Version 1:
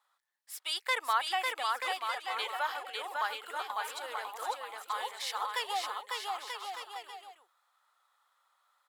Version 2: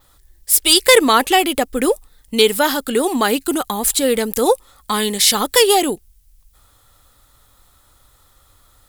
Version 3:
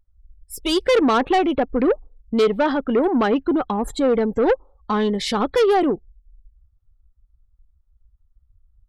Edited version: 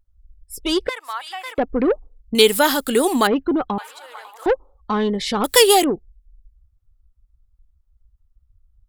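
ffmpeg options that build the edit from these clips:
-filter_complex "[0:a]asplit=2[s0][s1];[1:a]asplit=2[s2][s3];[2:a]asplit=5[s4][s5][s6][s7][s8];[s4]atrim=end=0.892[s9];[s0]atrim=start=0.888:end=1.582[s10];[s5]atrim=start=1.578:end=2.352[s11];[s2]atrim=start=2.348:end=3.272[s12];[s6]atrim=start=3.268:end=3.782[s13];[s1]atrim=start=3.778:end=4.462[s14];[s7]atrim=start=4.458:end=5.442[s15];[s3]atrim=start=5.438:end=5.842[s16];[s8]atrim=start=5.838[s17];[s9][s10]acrossfade=d=0.004:c1=hsin:c2=hsin[s18];[s18][s11]acrossfade=d=0.004:c1=hsin:c2=hsin[s19];[s19][s12]acrossfade=d=0.004:c1=hsin:c2=hsin[s20];[s20][s13]acrossfade=d=0.004:c1=hsin:c2=hsin[s21];[s21][s14]acrossfade=d=0.004:c1=hsin:c2=hsin[s22];[s22][s15]acrossfade=d=0.004:c1=hsin:c2=hsin[s23];[s23][s16]acrossfade=d=0.004:c1=hsin:c2=hsin[s24];[s24][s17]acrossfade=d=0.004:c1=hsin:c2=hsin"

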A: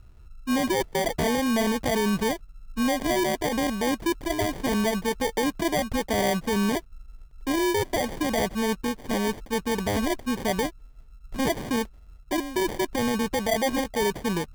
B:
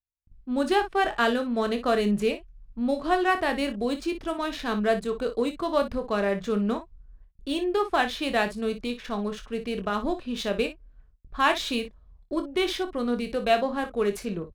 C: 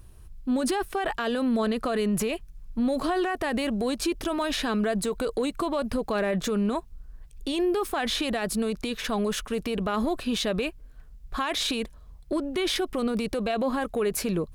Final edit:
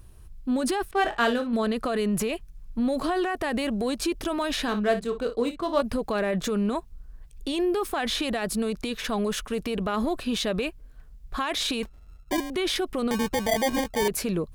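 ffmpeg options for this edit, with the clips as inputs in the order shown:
-filter_complex "[1:a]asplit=2[s0][s1];[0:a]asplit=2[s2][s3];[2:a]asplit=5[s4][s5][s6][s7][s8];[s4]atrim=end=0.912[s9];[s0]atrim=start=0.908:end=1.532[s10];[s5]atrim=start=1.528:end=4.682[s11];[s1]atrim=start=4.678:end=5.812[s12];[s6]atrim=start=5.808:end=11.832[s13];[s2]atrim=start=11.828:end=12.502[s14];[s7]atrim=start=12.498:end=13.112[s15];[s3]atrim=start=13.108:end=14.082[s16];[s8]atrim=start=14.078[s17];[s9][s10]acrossfade=d=0.004:c1=hsin:c2=hsin[s18];[s18][s11]acrossfade=d=0.004:c1=hsin:c2=hsin[s19];[s19][s12]acrossfade=d=0.004:c1=hsin:c2=hsin[s20];[s20][s13]acrossfade=d=0.004:c1=hsin:c2=hsin[s21];[s21][s14]acrossfade=d=0.004:c1=hsin:c2=hsin[s22];[s22][s15]acrossfade=d=0.004:c1=hsin:c2=hsin[s23];[s23][s16]acrossfade=d=0.004:c1=hsin:c2=hsin[s24];[s24][s17]acrossfade=d=0.004:c1=hsin:c2=hsin"

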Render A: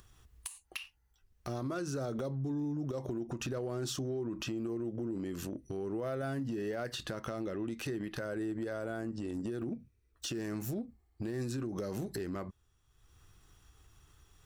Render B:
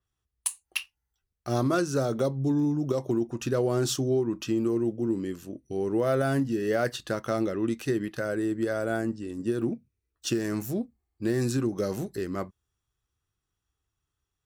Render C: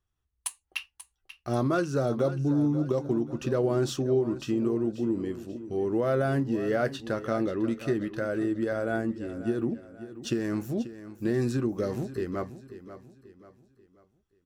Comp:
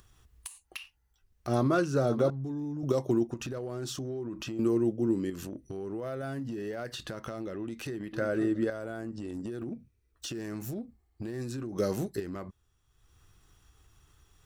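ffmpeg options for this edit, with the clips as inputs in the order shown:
-filter_complex "[2:a]asplit=2[s0][s1];[1:a]asplit=3[s2][s3][s4];[0:a]asplit=6[s5][s6][s7][s8][s9][s10];[s5]atrim=end=1.472[s11];[s0]atrim=start=1.468:end=2.302[s12];[s6]atrim=start=2.298:end=2.832[s13];[s2]atrim=start=2.828:end=3.342[s14];[s7]atrim=start=3.338:end=4.592[s15];[s3]atrim=start=4.588:end=5.302[s16];[s8]atrim=start=5.298:end=8.132[s17];[s1]atrim=start=8.128:end=8.702[s18];[s9]atrim=start=8.698:end=11.782[s19];[s4]atrim=start=11.778:end=12.202[s20];[s10]atrim=start=12.198[s21];[s11][s12]acrossfade=d=0.004:c1=hsin:c2=hsin[s22];[s22][s13]acrossfade=d=0.004:c1=hsin:c2=hsin[s23];[s23][s14]acrossfade=d=0.004:c1=hsin:c2=hsin[s24];[s24][s15]acrossfade=d=0.004:c1=hsin:c2=hsin[s25];[s25][s16]acrossfade=d=0.004:c1=hsin:c2=hsin[s26];[s26][s17]acrossfade=d=0.004:c1=hsin:c2=hsin[s27];[s27][s18]acrossfade=d=0.004:c1=hsin:c2=hsin[s28];[s28][s19]acrossfade=d=0.004:c1=hsin:c2=hsin[s29];[s29][s20]acrossfade=d=0.004:c1=hsin:c2=hsin[s30];[s30][s21]acrossfade=d=0.004:c1=hsin:c2=hsin"

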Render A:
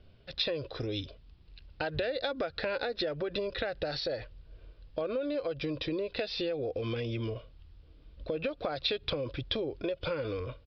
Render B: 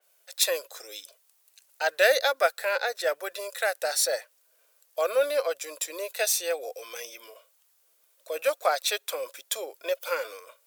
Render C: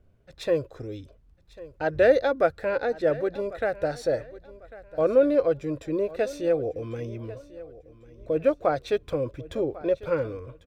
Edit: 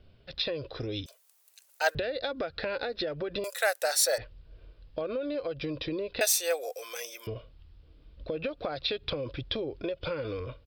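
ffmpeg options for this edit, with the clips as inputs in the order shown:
-filter_complex "[1:a]asplit=3[s0][s1][s2];[0:a]asplit=4[s3][s4][s5][s6];[s3]atrim=end=1.062[s7];[s0]atrim=start=1.058:end=1.952[s8];[s4]atrim=start=1.948:end=3.442[s9];[s1]atrim=start=3.438:end=4.182[s10];[s5]atrim=start=4.178:end=6.212[s11];[s2]atrim=start=6.208:end=7.272[s12];[s6]atrim=start=7.268[s13];[s7][s8]acrossfade=d=0.004:c1=hsin:c2=hsin[s14];[s14][s9]acrossfade=d=0.004:c1=hsin:c2=hsin[s15];[s15][s10]acrossfade=d=0.004:c1=hsin:c2=hsin[s16];[s16][s11]acrossfade=d=0.004:c1=hsin:c2=hsin[s17];[s17][s12]acrossfade=d=0.004:c1=hsin:c2=hsin[s18];[s18][s13]acrossfade=d=0.004:c1=hsin:c2=hsin"

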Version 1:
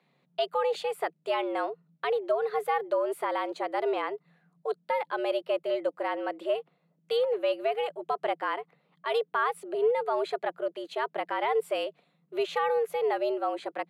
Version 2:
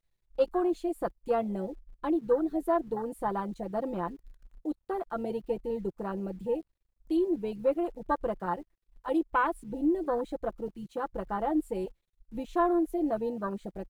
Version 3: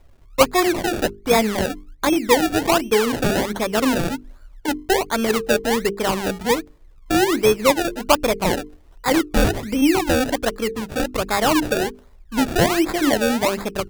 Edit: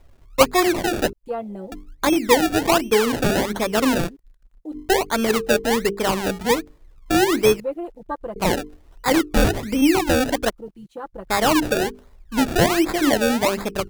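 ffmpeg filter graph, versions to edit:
-filter_complex "[1:a]asplit=4[s0][s1][s2][s3];[2:a]asplit=5[s4][s5][s6][s7][s8];[s4]atrim=end=1.132[s9];[s0]atrim=start=1.128:end=1.722[s10];[s5]atrim=start=1.718:end=4.1[s11];[s1]atrim=start=4.04:end=4.78[s12];[s6]atrim=start=4.72:end=7.602[s13];[s2]atrim=start=7.598:end=8.362[s14];[s7]atrim=start=8.358:end=10.502[s15];[s3]atrim=start=10.498:end=11.302[s16];[s8]atrim=start=11.298[s17];[s9][s10]acrossfade=d=0.004:c1=hsin:c2=hsin[s18];[s18][s11]acrossfade=d=0.004:c1=hsin:c2=hsin[s19];[s19][s12]acrossfade=d=0.06:c1=tri:c2=tri[s20];[s20][s13]acrossfade=d=0.06:c1=tri:c2=tri[s21];[s21][s14]acrossfade=d=0.004:c1=hsin:c2=hsin[s22];[s22][s15]acrossfade=d=0.004:c1=hsin:c2=hsin[s23];[s23][s16]acrossfade=d=0.004:c1=hsin:c2=hsin[s24];[s24][s17]acrossfade=d=0.004:c1=hsin:c2=hsin"

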